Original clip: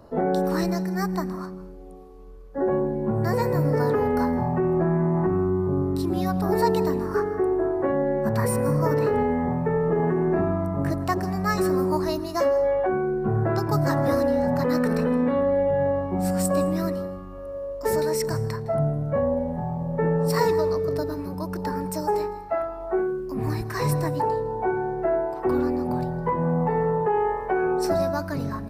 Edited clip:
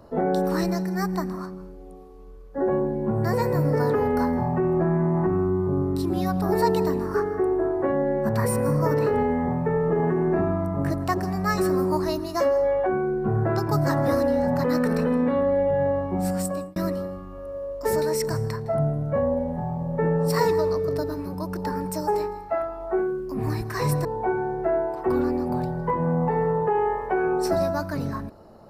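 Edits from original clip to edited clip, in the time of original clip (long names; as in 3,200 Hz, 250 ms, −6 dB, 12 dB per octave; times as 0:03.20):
0:16.07–0:16.76: fade out equal-power
0:24.05–0:24.44: remove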